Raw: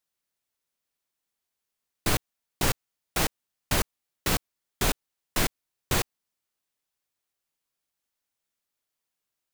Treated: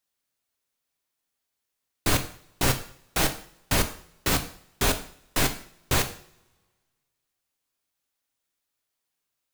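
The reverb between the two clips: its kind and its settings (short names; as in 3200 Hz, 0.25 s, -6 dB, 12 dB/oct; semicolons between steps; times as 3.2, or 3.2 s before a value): two-slope reverb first 0.49 s, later 1.7 s, from -25 dB, DRR 6 dB; gain +1.5 dB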